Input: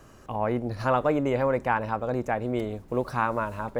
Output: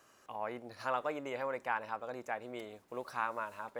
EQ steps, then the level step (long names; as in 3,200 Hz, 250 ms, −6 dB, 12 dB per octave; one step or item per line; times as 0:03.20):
high-pass filter 1,100 Hz 6 dB per octave
−6.0 dB